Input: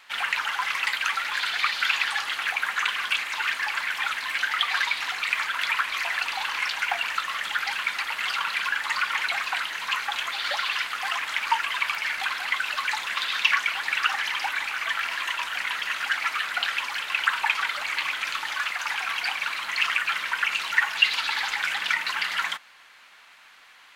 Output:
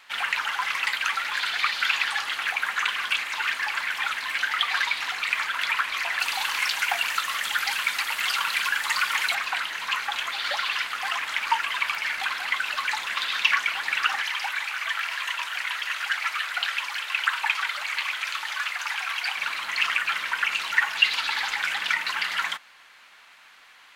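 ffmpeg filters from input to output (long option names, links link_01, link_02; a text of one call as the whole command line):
ffmpeg -i in.wav -filter_complex "[0:a]asettb=1/sr,asplit=3[link_01][link_02][link_03];[link_01]atrim=end=6.204[link_04];[link_02]atrim=start=6.2:end=9.35,asetpts=PTS-STARTPTS,afade=type=in:duration=0.004:curve=qsin,afade=type=out:start_time=3.146:duration=0.004:curve=qsin,highshelf=frequency=5700:gain=12[link_05];[link_03]atrim=start=9.346[link_06];[link_04][link_05]acrossfade=duration=0.004:curve1=hsin:curve2=qsin[link_07];[link_07][link_06]acrossfade=duration=0.004:curve1=qsin:curve2=hsin,asettb=1/sr,asplit=3[link_08][link_09][link_10];[link_08]atrim=end=14.224[link_11];[link_09]atrim=start=14.22:end=19.37,asetpts=PTS-STARTPTS,afade=type=in:duration=0.004:curve=qsin,afade=type=out:start_time=5.146:duration=0.004:curve=qsin,highpass=frequency=800:poles=1[link_12];[link_10]atrim=start=19.366[link_13];[link_11][link_12]acrossfade=duration=0.004:curve1=hsin:curve2=qsin[link_14];[link_14][link_13]acrossfade=duration=0.004:curve1=qsin:curve2=hsin" out.wav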